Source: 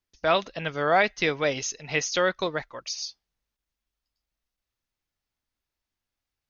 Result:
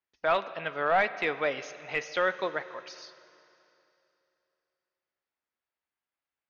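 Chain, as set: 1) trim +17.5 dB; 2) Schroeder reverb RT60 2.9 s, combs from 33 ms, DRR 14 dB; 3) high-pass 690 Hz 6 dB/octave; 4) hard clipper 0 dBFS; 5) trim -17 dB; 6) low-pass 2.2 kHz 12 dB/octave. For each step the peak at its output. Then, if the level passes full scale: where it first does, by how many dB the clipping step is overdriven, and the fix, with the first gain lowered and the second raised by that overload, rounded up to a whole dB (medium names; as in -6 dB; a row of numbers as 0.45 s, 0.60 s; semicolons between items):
+8.0 dBFS, +9.0 dBFS, +8.5 dBFS, 0.0 dBFS, -17.0 dBFS, -16.5 dBFS; step 1, 8.5 dB; step 1 +8.5 dB, step 5 -8 dB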